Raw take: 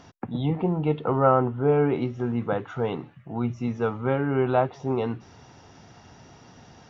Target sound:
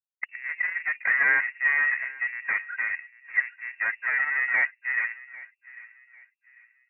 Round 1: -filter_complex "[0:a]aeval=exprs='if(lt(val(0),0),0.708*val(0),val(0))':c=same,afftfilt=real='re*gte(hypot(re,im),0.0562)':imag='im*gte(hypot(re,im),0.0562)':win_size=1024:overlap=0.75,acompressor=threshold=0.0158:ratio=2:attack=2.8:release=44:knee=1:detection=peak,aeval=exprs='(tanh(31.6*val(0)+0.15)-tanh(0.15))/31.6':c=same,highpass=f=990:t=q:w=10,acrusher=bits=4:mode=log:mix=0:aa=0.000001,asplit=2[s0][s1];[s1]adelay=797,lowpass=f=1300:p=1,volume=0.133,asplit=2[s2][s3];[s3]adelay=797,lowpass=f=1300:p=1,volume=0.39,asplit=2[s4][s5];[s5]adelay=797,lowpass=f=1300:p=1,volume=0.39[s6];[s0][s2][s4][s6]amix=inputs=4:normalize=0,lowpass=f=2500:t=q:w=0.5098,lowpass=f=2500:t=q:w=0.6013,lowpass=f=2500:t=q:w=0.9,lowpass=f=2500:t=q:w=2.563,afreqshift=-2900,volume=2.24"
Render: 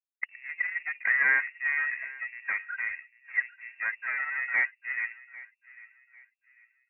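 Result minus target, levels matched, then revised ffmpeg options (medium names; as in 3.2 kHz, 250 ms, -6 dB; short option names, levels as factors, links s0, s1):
compression: peak gain reduction +5.5 dB
-filter_complex "[0:a]aeval=exprs='if(lt(val(0),0),0.708*val(0),val(0))':c=same,afftfilt=real='re*gte(hypot(re,im),0.0562)':imag='im*gte(hypot(re,im),0.0562)':win_size=1024:overlap=0.75,acompressor=threshold=0.0531:ratio=2:attack=2.8:release=44:knee=1:detection=peak,aeval=exprs='(tanh(31.6*val(0)+0.15)-tanh(0.15))/31.6':c=same,highpass=f=990:t=q:w=10,acrusher=bits=4:mode=log:mix=0:aa=0.000001,asplit=2[s0][s1];[s1]adelay=797,lowpass=f=1300:p=1,volume=0.133,asplit=2[s2][s3];[s3]adelay=797,lowpass=f=1300:p=1,volume=0.39,asplit=2[s4][s5];[s5]adelay=797,lowpass=f=1300:p=1,volume=0.39[s6];[s0][s2][s4][s6]amix=inputs=4:normalize=0,lowpass=f=2500:t=q:w=0.5098,lowpass=f=2500:t=q:w=0.6013,lowpass=f=2500:t=q:w=0.9,lowpass=f=2500:t=q:w=2.563,afreqshift=-2900,volume=2.24"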